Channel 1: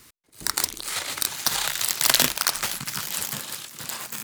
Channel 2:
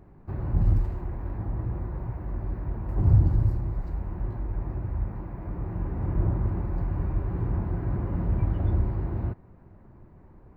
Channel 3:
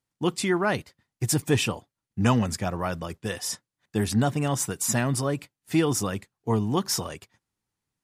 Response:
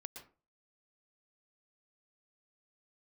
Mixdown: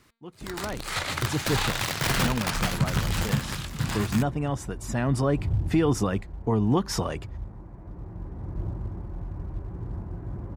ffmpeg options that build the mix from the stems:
-filter_complex "[0:a]bandreject=frequency=229.8:width_type=h:width=4,bandreject=frequency=459.6:width_type=h:width=4,bandreject=frequency=689.4:width_type=h:width=4,bandreject=frequency=919.2:width_type=h:width=4,bandreject=frequency=1149:width_type=h:width=4,bandreject=frequency=1378.8:width_type=h:width=4,bandreject=frequency=1608.6:width_type=h:width=4,bandreject=frequency=1838.4:width_type=h:width=4,bandreject=frequency=2068.2:width_type=h:width=4,bandreject=frequency=2298:width_type=h:width=4,bandreject=frequency=2527.8:width_type=h:width=4,bandreject=frequency=2757.6:width_type=h:width=4,bandreject=frequency=2987.4:width_type=h:width=4,bandreject=frequency=3217.2:width_type=h:width=4,bandreject=frequency=3447:width_type=h:width=4,bandreject=frequency=3676.8:width_type=h:width=4,bandreject=frequency=3906.6:width_type=h:width=4,bandreject=frequency=4136.4:width_type=h:width=4,bandreject=frequency=4366.2:width_type=h:width=4,bandreject=frequency=4596:width_type=h:width=4,asubboost=boost=9:cutoff=160,aeval=exprs='(mod(6.31*val(0)+1,2)-1)/6.31':channel_layout=same,volume=-2.5dB[link_01];[1:a]acrusher=bits=8:mode=log:mix=0:aa=0.000001,adelay=2400,volume=-16.5dB[link_02];[2:a]dynaudnorm=framelen=250:gausssize=5:maxgain=7.5dB,volume=-8.5dB,afade=type=in:start_time=4.97:duration=0.49:silence=0.316228[link_03];[link_01][link_02][link_03]amix=inputs=3:normalize=0,lowpass=frequency=1800:poles=1,dynaudnorm=framelen=120:gausssize=13:maxgain=9.5dB,alimiter=limit=-13.5dB:level=0:latency=1:release=241"

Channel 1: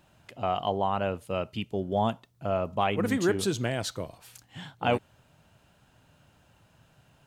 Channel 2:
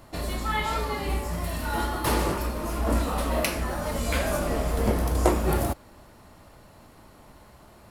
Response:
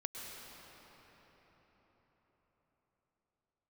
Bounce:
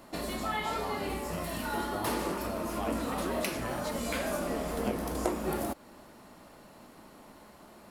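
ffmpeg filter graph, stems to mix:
-filter_complex "[0:a]volume=-9dB[link_01];[1:a]lowshelf=frequency=150:width_type=q:width=1.5:gain=-9.5,volume=-1dB[link_02];[link_01][link_02]amix=inputs=2:normalize=0,acompressor=threshold=-33dB:ratio=2"

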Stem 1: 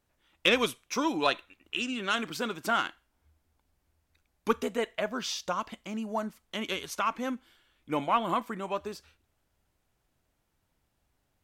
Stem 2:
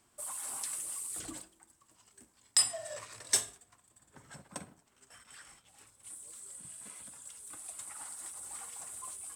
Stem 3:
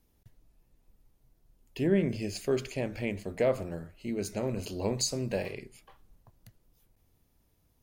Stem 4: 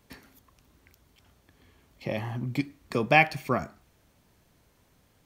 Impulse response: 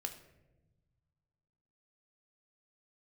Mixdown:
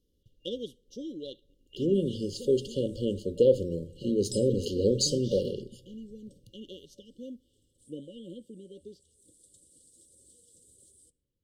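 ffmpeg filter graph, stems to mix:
-filter_complex "[0:a]volume=-8.5dB,asplit=3[link_01][link_02][link_03];[link_02]volume=-22dB[link_04];[1:a]equalizer=frequency=2800:width=3.7:gain=-14.5,adelay=1750,volume=-4.5dB,asplit=2[link_05][link_06];[link_06]volume=-9dB[link_07];[2:a]dynaudnorm=framelen=510:gausssize=11:maxgain=10dB,lowshelf=frequency=410:gain=-9.5,volume=2.5dB,asplit=2[link_08][link_09];[link_09]volume=-13.5dB[link_10];[3:a]adelay=1950,volume=-10dB[link_11];[link_03]apad=whole_len=489834[link_12];[link_05][link_12]sidechaincompress=threshold=-55dB:ratio=8:attack=16:release=313[link_13];[4:a]atrim=start_sample=2205[link_14];[link_04][link_07][link_10]amix=inputs=3:normalize=0[link_15];[link_15][link_14]afir=irnorm=-1:irlink=0[link_16];[link_01][link_13][link_08][link_11][link_16]amix=inputs=5:normalize=0,afftfilt=real='re*(1-between(b*sr/4096,580,2800))':imag='im*(1-between(b*sr/4096,580,2800))':win_size=4096:overlap=0.75,aemphasis=mode=reproduction:type=75kf"

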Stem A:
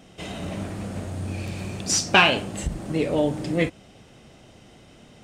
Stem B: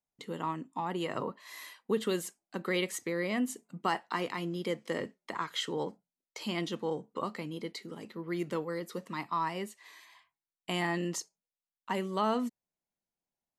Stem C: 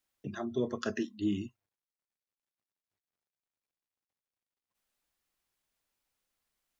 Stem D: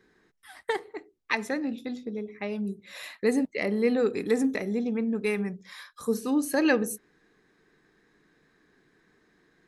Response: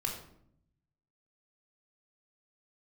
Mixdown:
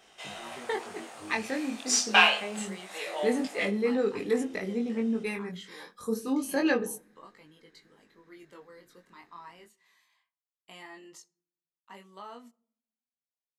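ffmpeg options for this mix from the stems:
-filter_complex "[0:a]highpass=frequency=690:width=0.5412,highpass=frequency=690:width=1.3066,volume=-1.5dB,asplit=2[link_01][link_02];[link_02]volume=-14dB[link_03];[1:a]lowshelf=frequency=440:gain=-9.5,volume=-10dB,asplit=2[link_04][link_05];[link_05]volume=-24dB[link_06];[2:a]acompressor=threshold=-43dB:ratio=2.5,volume=-3.5dB[link_07];[3:a]volume=-0.5dB,asplit=2[link_08][link_09];[link_09]volume=-23.5dB[link_10];[4:a]atrim=start_sample=2205[link_11];[link_03][link_06][link_10]amix=inputs=3:normalize=0[link_12];[link_12][link_11]afir=irnorm=-1:irlink=0[link_13];[link_01][link_04][link_07][link_08][link_13]amix=inputs=5:normalize=0,flanger=delay=19.5:depth=3.7:speed=0.26"

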